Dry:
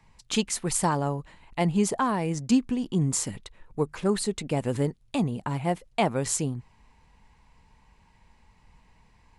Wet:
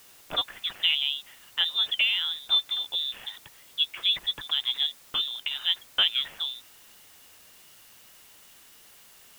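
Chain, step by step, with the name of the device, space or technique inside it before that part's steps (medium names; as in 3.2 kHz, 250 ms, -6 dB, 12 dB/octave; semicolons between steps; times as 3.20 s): scrambled radio voice (band-pass 300–2700 Hz; frequency inversion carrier 3.8 kHz; white noise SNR 23 dB); trim +2 dB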